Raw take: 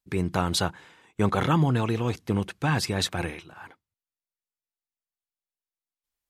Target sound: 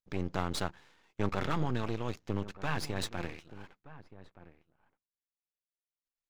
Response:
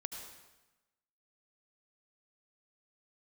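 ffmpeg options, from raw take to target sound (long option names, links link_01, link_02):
-filter_complex "[0:a]aresample=16000,aresample=44100,aeval=exprs='max(val(0),0)':channel_layout=same,asplit=2[link_01][link_02];[link_02]adelay=1224,volume=-16dB,highshelf=frequency=4000:gain=-27.6[link_03];[link_01][link_03]amix=inputs=2:normalize=0,volume=-6dB"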